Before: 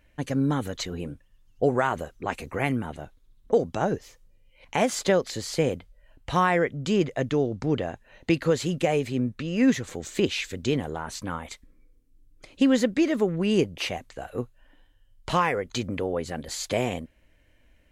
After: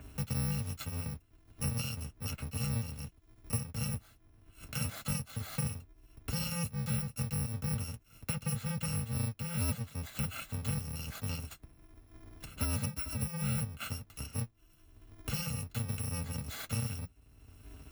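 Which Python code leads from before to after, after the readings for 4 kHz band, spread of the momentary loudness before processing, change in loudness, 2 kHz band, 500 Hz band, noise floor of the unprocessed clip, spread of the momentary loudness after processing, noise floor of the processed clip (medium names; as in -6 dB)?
-9.0 dB, 13 LU, -10.0 dB, -13.5 dB, -23.5 dB, -61 dBFS, 10 LU, -64 dBFS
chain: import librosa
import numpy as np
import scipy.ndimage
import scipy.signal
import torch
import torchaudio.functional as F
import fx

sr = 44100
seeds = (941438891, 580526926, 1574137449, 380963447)

y = fx.bit_reversed(x, sr, seeds[0], block=128)
y = scipy.signal.sosfilt(scipy.signal.butter(2, 62.0, 'highpass', fs=sr, output='sos'), y)
y = fx.bass_treble(y, sr, bass_db=10, treble_db=-9)
y = fx.notch_comb(y, sr, f0_hz=180.0)
y = fx.band_squash(y, sr, depth_pct=70)
y = F.gain(torch.from_numpy(y), -7.5).numpy()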